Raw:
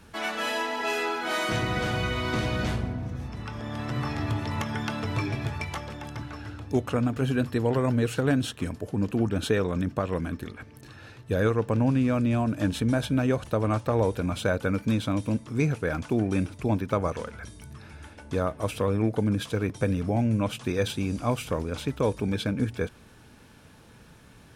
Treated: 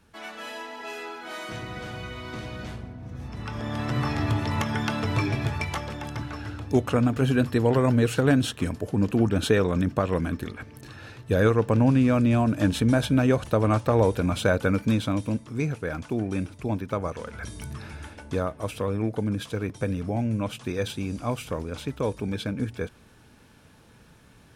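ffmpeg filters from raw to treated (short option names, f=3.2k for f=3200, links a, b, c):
-af "volume=14dB,afade=t=in:st=2.98:d=0.62:silence=0.251189,afade=t=out:st=14.65:d=0.94:silence=0.501187,afade=t=in:st=17.21:d=0.41:silence=0.298538,afade=t=out:st=17.62:d=0.88:silence=0.316228"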